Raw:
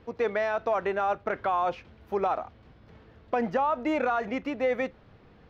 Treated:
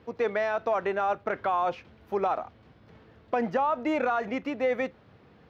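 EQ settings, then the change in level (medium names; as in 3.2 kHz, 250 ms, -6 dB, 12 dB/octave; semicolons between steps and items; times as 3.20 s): high-pass 84 Hz; 0.0 dB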